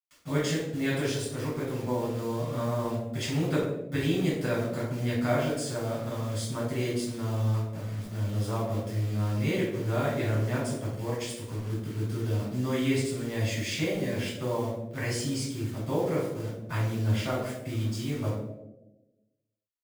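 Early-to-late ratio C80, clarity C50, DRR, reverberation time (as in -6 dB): 5.5 dB, 2.0 dB, -7.5 dB, 1.1 s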